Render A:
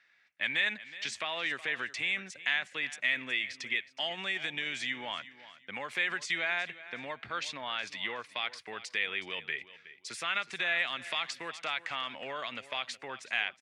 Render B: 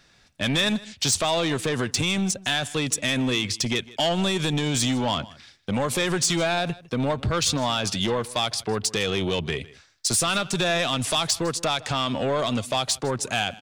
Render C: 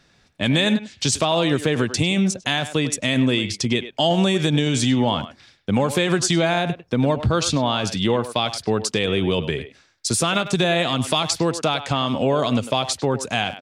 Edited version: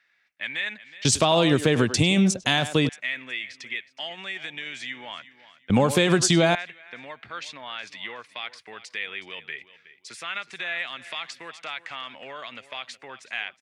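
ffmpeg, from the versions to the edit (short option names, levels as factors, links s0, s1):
-filter_complex "[2:a]asplit=2[s0][s1];[0:a]asplit=3[s2][s3][s4];[s2]atrim=end=1.052[s5];[s0]atrim=start=1.048:end=2.892[s6];[s3]atrim=start=2.888:end=5.702[s7];[s1]atrim=start=5.698:end=6.552[s8];[s4]atrim=start=6.548[s9];[s5][s6]acrossfade=d=0.004:c1=hsin:c2=hsin[s10];[s10][s7]acrossfade=d=0.004:c1=hsin:c2=hsin[s11];[s11][s8]acrossfade=d=0.004:c1=hsin:c2=hsin[s12];[s12][s9]acrossfade=d=0.004:c1=hsin:c2=hsin"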